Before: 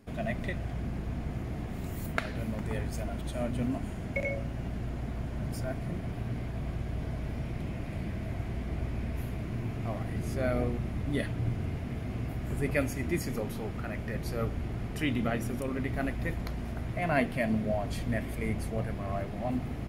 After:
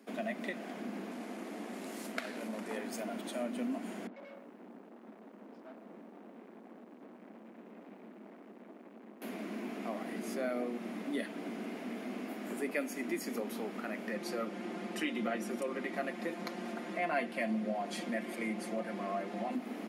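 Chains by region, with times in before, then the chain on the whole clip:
0:01.11–0:02.77: variable-slope delta modulation 64 kbit/s + high-pass filter 190 Hz + saturating transformer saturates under 2,300 Hz
0:04.07–0:09.22: tube saturation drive 45 dB, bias 0.55 + head-to-tape spacing loss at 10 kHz 42 dB + feedback echo at a low word length 110 ms, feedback 35%, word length 11 bits, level −13.5 dB
0:14.11–0:19.55: low-pass filter 10,000 Hz + comb filter 5.7 ms, depth 69%
whole clip: Butterworth high-pass 200 Hz 72 dB per octave; downward compressor 2 to 1, threshold −37 dBFS; level +1 dB

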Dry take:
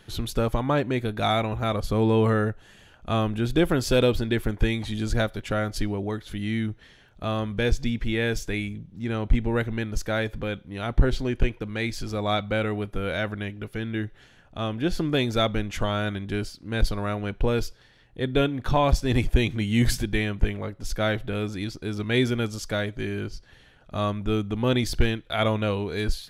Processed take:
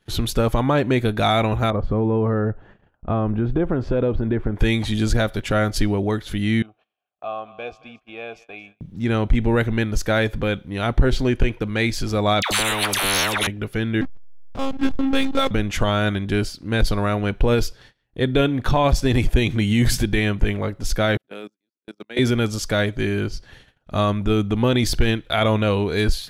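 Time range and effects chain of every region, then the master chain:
0:01.70–0:04.56: low-pass filter 1,200 Hz + downward compressor 4 to 1, threshold −24 dBFS
0:06.62–0:08.81: formant filter a + feedback echo with a high-pass in the loop 225 ms, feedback 58%, high-pass 810 Hz, level −15 dB
0:12.42–0:13.47: upward compression, threshold −29 dBFS + all-pass dispersion lows, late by 93 ms, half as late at 980 Hz + every bin compressed towards the loudest bin 10 to 1
0:14.01–0:15.51: one-pitch LPC vocoder at 8 kHz 270 Hz + parametric band 580 Hz −2.5 dB 0.42 octaves + slack as between gear wheels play −30.5 dBFS
0:21.17–0:22.19: noise gate −27 dBFS, range −31 dB + high-pass filter 210 Hz 24 dB per octave + output level in coarse steps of 21 dB
whole clip: noise gate −52 dBFS, range −23 dB; brickwall limiter −16 dBFS; level +7.5 dB

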